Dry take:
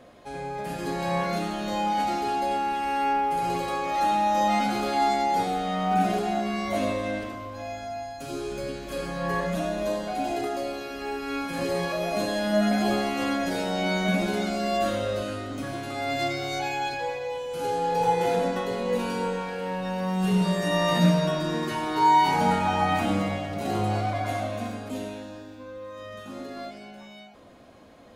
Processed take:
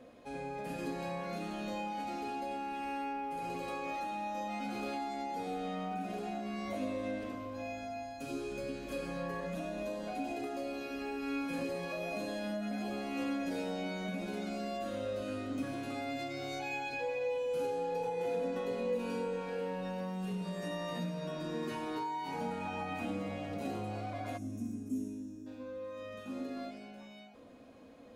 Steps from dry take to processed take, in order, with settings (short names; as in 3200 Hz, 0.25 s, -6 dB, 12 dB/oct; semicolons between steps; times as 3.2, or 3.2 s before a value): spectral gain 24.38–25.47, 420–5100 Hz -20 dB; compressor 6:1, threshold -29 dBFS, peak gain reduction 13 dB; small resonant body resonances 260/480/2500 Hz, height 9 dB, ringing for 45 ms; gain -8.5 dB